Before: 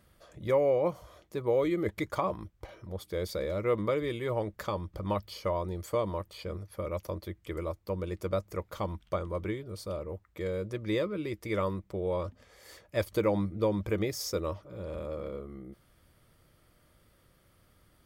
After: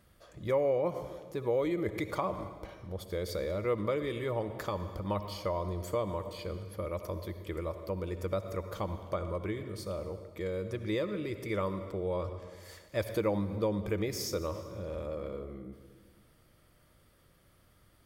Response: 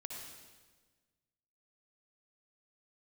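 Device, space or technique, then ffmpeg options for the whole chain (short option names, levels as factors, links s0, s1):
ducked reverb: -filter_complex "[0:a]asplit=3[s0][s1][s2];[1:a]atrim=start_sample=2205[s3];[s1][s3]afir=irnorm=-1:irlink=0[s4];[s2]apad=whole_len=796119[s5];[s4][s5]sidechaincompress=threshold=0.0158:ratio=8:attack=41:release=104,volume=0.944[s6];[s0][s6]amix=inputs=2:normalize=0,volume=0.631"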